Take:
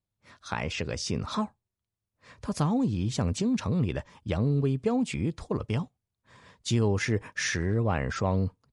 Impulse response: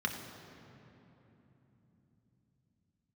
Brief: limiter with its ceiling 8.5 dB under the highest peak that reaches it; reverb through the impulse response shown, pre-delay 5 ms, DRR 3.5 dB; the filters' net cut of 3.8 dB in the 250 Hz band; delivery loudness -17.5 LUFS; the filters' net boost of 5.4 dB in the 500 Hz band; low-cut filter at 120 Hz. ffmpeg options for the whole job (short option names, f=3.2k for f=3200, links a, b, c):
-filter_complex "[0:a]highpass=120,equalizer=f=250:t=o:g=-6.5,equalizer=f=500:t=o:g=8.5,alimiter=limit=-20dB:level=0:latency=1,asplit=2[a][b];[1:a]atrim=start_sample=2205,adelay=5[c];[b][c]afir=irnorm=-1:irlink=0,volume=-9.5dB[d];[a][d]amix=inputs=2:normalize=0,volume=12dB"